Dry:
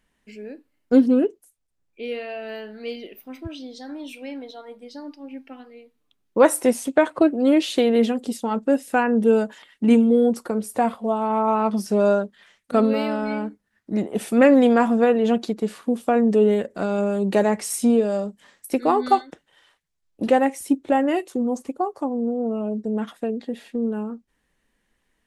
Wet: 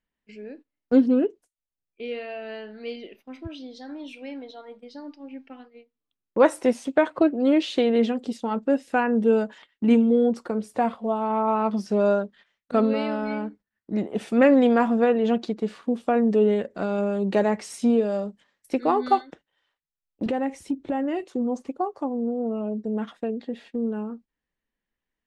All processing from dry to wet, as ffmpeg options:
ffmpeg -i in.wav -filter_complex "[0:a]asettb=1/sr,asplit=3[link_01][link_02][link_03];[link_01]atrim=end=20.264[link_04];[link_02]atrim=start=20.26:end=21.24,asetpts=PTS-STARTPTS,afade=type=in:duration=0.004:curve=qsin,afade=type=out:start_time=0.976:duration=0.004:curve=qsin,lowshelf=frequency=230:gain=11,acompressor=threshold=-22dB:ratio=3:attack=3.2:release=140:knee=1:detection=peak[link_05];[link_03]atrim=start=21.236[link_06];[link_04][link_05]acrossfade=duration=0.004:curve1=hsin:curve2=qsin[link_07];[link_07][link_06]acrossfade=duration=0.004:curve1=qsin:curve2=hsin,agate=range=-13dB:threshold=-44dB:ratio=16:detection=peak,lowpass=5200,volume=-2.5dB" out.wav

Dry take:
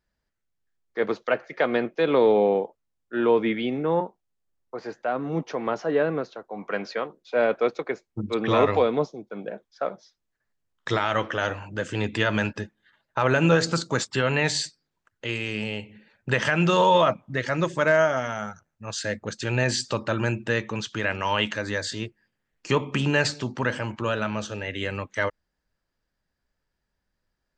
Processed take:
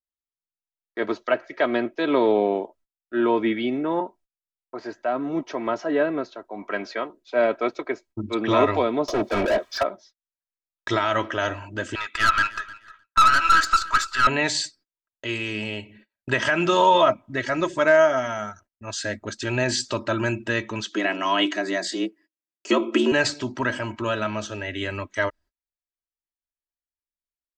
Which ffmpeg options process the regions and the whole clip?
ffmpeg -i in.wav -filter_complex "[0:a]asettb=1/sr,asplit=3[link_01][link_02][link_03];[link_01]atrim=end=9.084[link_04];[link_02]atrim=start=9.08:end=9.83,asetpts=PTS-STARTPTS,afade=type=in:duration=0.004:curve=qsin,afade=type=out:start_time=0.746:duration=0.004:curve=qsin,aecho=1:1:1.7:0.43,atrim=end_sample=33075,asplit=2[link_05][link_06];[link_06]highpass=frequency=720:poles=1,volume=39dB,asoftclip=type=tanh:threshold=-14.5dB[link_07];[link_05][link_07]amix=inputs=2:normalize=0,lowpass=frequency=2100:poles=1,volume=-6dB[link_08];[link_03]atrim=start=9.826[link_09];[link_04][link_08]acrossfade=duration=0.004:curve1=hsin:curve2=qsin[link_10];[link_10][link_09]acrossfade=duration=0.004:curve1=qsin:curve2=hsin,asettb=1/sr,asplit=3[link_11][link_12][link_13];[link_11]atrim=end=11.954[link_14];[link_12]atrim=start=11.95:end=14.27,asetpts=PTS-STARTPTS,afade=type=in:duration=0.004:curve=qsin,afade=type=out:start_time=2.316:duration=0.004:curve=qsin,highpass=frequency=1300:width_type=q:width=9.7,aeval=exprs='(tanh(5.62*val(0)+0.4)-tanh(0.4))/5.62':channel_layout=same,aecho=1:1:306|612:0.1|0.022,atrim=end_sample=102312[link_15];[link_13]atrim=start=14.266[link_16];[link_14][link_15]acrossfade=duration=0.004:curve1=hsin:curve2=qsin[link_17];[link_17][link_16]acrossfade=duration=0.004:curve1=qsin:curve2=hsin,asettb=1/sr,asplit=3[link_18][link_19][link_20];[link_18]atrim=end=20.854[link_21];[link_19]atrim=start=20.85:end=23.12,asetpts=PTS-STARTPTS,afade=type=in:duration=0.004:curve=qsin,afade=type=out:start_time=2.266:duration=0.004:curve=qsin,highpass=45,equalizer=frequency=240:width=5.9:gain=13.5,afreqshift=88[link_22];[link_20]atrim=start=23.116[link_23];[link_21][link_22]acrossfade=duration=0.004:curve1=hsin:curve2=qsin[link_24];[link_24][link_23]acrossfade=duration=0.004:curve1=qsin:curve2=hsin,agate=range=-29dB:threshold=-51dB:ratio=16:detection=peak,aecho=1:1:3.1:0.64" out.wav

